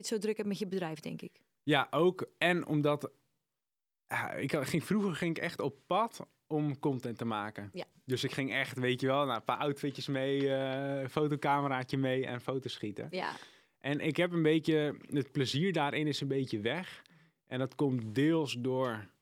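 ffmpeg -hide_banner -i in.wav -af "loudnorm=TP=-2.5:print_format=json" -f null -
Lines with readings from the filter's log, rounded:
"input_i" : "-33.5",
"input_tp" : "-12.4",
"input_lra" : "2.7",
"input_thresh" : "-43.9",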